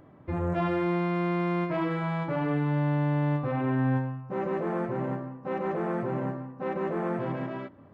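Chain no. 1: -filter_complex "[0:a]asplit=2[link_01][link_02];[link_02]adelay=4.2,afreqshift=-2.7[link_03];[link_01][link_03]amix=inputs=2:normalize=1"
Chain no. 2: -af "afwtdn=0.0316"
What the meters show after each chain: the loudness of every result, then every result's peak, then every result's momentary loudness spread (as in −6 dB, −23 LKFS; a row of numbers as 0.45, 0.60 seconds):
−32.5, −30.0 LKFS; −19.5, −17.5 dBFS; 8, 8 LU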